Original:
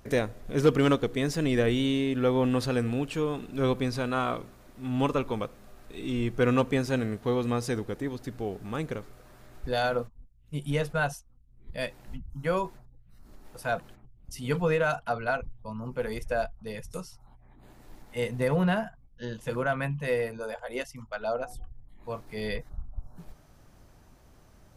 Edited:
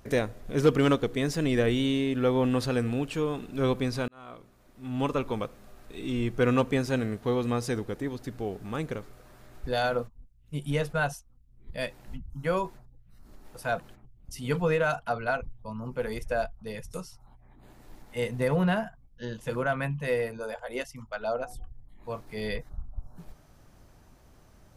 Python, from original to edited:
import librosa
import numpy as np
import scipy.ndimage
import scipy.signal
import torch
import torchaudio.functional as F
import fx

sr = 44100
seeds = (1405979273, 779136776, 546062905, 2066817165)

y = fx.edit(x, sr, fx.fade_in_span(start_s=4.08, length_s=1.22), tone=tone)